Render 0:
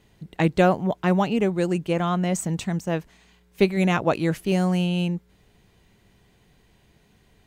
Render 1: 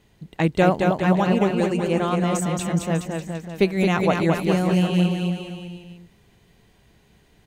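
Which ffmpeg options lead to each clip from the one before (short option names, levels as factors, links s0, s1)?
-af "aecho=1:1:220|418|596.2|756.6|900.9:0.631|0.398|0.251|0.158|0.1"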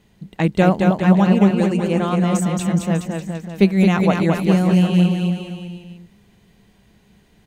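-af "equalizer=f=200:t=o:w=0.25:g=10,volume=1.12"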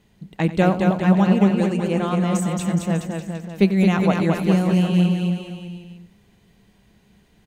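-af "aecho=1:1:91:0.178,volume=0.75"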